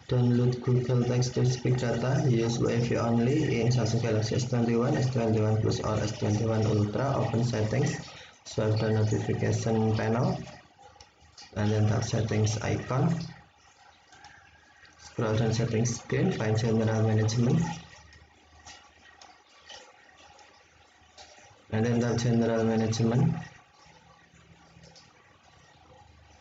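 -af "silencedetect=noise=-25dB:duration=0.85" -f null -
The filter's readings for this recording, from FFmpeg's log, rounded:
silence_start: 10.35
silence_end: 11.57 | silence_duration: 1.22
silence_start: 13.14
silence_end: 15.19 | silence_duration: 2.05
silence_start: 17.72
silence_end: 21.73 | silence_duration: 4.01
silence_start: 23.38
silence_end: 26.40 | silence_duration: 3.03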